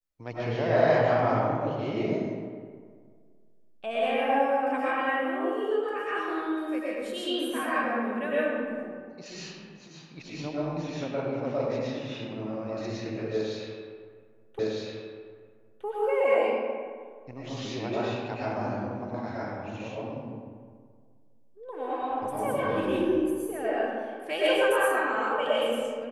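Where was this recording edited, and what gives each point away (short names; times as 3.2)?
14.59 repeat of the last 1.26 s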